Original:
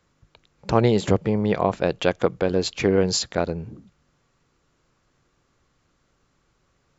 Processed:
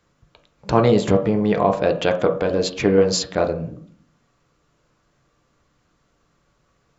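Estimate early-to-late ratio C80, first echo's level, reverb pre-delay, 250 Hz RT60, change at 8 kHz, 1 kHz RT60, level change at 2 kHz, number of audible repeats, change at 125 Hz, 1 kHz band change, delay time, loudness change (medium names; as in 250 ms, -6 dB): 15.5 dB, no echo, 7 ms, 0.85 s, no reading, 0.45 s, +2.0 dB, no echo, +1.0 dB, +4.0 dB, no echo, +3.0 dB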